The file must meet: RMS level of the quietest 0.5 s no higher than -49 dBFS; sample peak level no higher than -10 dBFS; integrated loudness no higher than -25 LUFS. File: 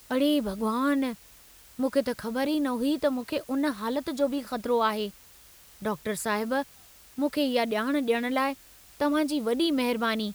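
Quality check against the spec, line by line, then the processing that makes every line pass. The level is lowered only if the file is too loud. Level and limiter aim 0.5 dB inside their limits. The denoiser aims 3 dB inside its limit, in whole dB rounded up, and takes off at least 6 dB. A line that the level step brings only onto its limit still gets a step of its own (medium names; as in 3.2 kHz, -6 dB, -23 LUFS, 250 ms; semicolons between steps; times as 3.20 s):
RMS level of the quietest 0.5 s -53 dBFS: pass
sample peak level -12.5 dBFS: pass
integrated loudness -28.0 LUFS: pass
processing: none needed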